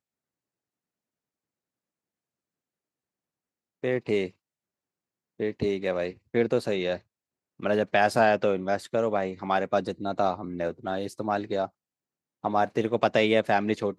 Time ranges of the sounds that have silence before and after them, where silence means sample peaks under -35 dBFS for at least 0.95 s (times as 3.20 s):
3.84–4.28 s